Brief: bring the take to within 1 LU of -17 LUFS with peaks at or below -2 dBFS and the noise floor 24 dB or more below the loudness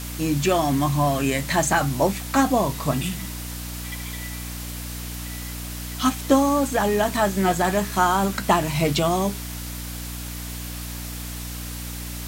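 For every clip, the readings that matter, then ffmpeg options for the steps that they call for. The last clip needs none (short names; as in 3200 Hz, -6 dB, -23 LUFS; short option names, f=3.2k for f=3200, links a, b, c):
hum 60 Hz; harmonics up to 300 Hz; hum level -32 dBFS; noise floor -33 dBFS; noise floor target -48 dBFS; loudness -24.0 LUFS; peak -5.0 dBFS; loudness target -17.0 LUFS
-> -af "bandreject=f=60:t=h:w=4,bandreject=f=120:t=h:w=4,bandreject=f=180:t=h:w=4,bandreject=f=240:t=h:w=4,bandreject=f=300:t=h:w=4"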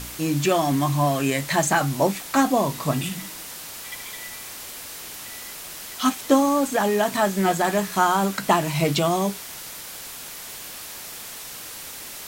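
hum none; noise floor -37 dBFS; noise floor target -47 dBFS
-> -af "afftdn=nr=10:nf=-37"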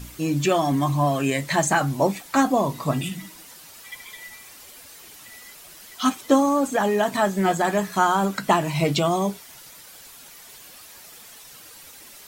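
noise floor -45 dBFS; noise floor target -46 dBFS
-> -af "afftdn=nr=6:nf=-45"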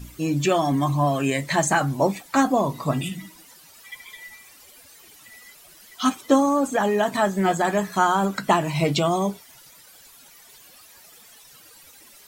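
noise floor -50 dBFS; loudness -22.0 LUFS; peak -5.5 dBFS; loudness target -17.0 LUFS
-> -af "volume=5dB,alimiter=limit=-2dB:level=0:latency=1"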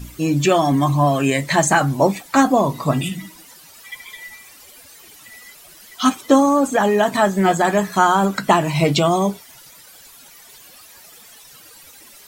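loudness -17.0 LUFS; peak -2.0 dBFS; noise floor -45 dBFS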